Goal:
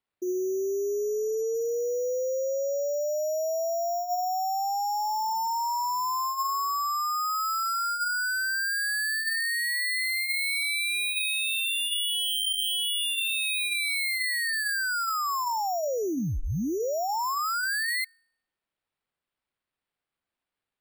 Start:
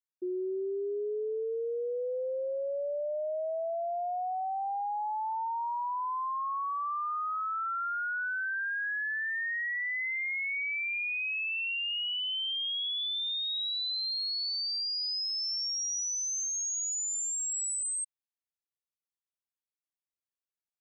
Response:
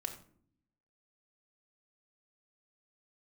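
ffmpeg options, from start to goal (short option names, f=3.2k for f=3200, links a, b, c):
-af "bandreject=f=353.3:t=h:w=4,bandreject=f=706.6:t=h:w=4,bandreject=f=1.0599k:t=h:w=4,bandreject=f=1.4132k:t=h:w=4,bandreject=f=1.7665k:t=h:w=4,bandreject=f=2.1198k:t=h:w=4,bandreject=f=2.4731k:t=h:w=4,bandreject=f=2.8264k:t=h:w=4,bandreject=f=3.1797k:t=h:w=4,bandreject=f=3.533k:t=h:w=4,bandreject=f=3.8863k:t=h:w=4,bandreject=f=4.2396k:t=h:w=4,bandreject=f=4.5929k:t=h:w=4,bandreject=f=4.9462k:t=h:w=4,bandreject=f=5.2995k:t=h:w=4,bandreject=f=5.6528k:t=h:w=4,bandreject=f=6.0061k:t=h:w=4,bandreject=f=6.3594k:t=h:w=4,bandreject=f=6.7127k:t=h:w=4,bandreject=f=7.066k:t=h:w=4,bandreject=f=7.4193k:t=h:w=4,bandreject=f=7.7726k:t=h:w=4,bandreject=f=8.1259k:t=h:w=4,bandreject=f=8.4792k:t=h:w=4,bandreject=f=8.8325k:t=h:w=4,bandreject=f=9.1858k:t=h:w=4,bandreject=f=9.5391k:t=h:w=4,bandreject=f=9.8924k:t=h:w=4,bandreject=f=10.2457k:t=h:w=4,bandreject=f=10.599k:t=h:w=4,bandreject=f=10.9523k:t=h:w=4,bandreject=f=11.3056k:t=h:w=4,acrusher=samples=7:mix=1:aa=0.000001,volume=5dB"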